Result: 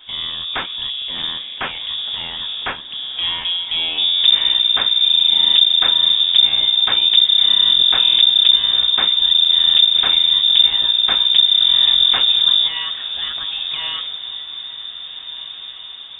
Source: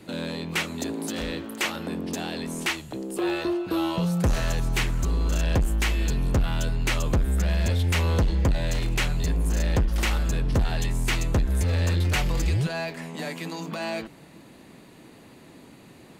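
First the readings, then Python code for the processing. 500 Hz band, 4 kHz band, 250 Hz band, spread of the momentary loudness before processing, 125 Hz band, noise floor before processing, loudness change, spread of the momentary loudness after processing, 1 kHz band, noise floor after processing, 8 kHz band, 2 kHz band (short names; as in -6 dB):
n/a, +26.0 dB, under -10 dB, 8 LU, under -20 dB, -50 dBFS, +14.0 dB, 16 LU, +3.0 dB, -33 dBFS, under -40 dB, +3.0 dB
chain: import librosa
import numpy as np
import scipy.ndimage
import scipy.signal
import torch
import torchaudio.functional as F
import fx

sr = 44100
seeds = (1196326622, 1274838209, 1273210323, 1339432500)

y = fx.octave_divider(x, sr, octaves=1, level_db=2.0)
y = fx.freq_invert(y, sr, carrier_hz=3600)
y = fx.echo_diffused(y, sr, ms=1748, feedback_pct=52, wet_db=-14.5)
y = F.gain(torch.from_numpy(y), 3.0).numpy()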